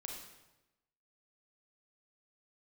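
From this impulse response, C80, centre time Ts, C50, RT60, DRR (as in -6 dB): 5.0 dB, 50 ms, 2.5 dB, 1.0 s, 0.0 dB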